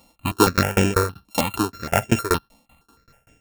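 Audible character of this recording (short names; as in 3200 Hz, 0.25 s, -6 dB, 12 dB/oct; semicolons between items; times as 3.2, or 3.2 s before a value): a buzz of ramps at a fixed pitch in blocks of 32 samples; tremolo saw down 5.2 Hz, depth 100%; notches that jump at a steady rate 6.4 Hz 410–4200 Hz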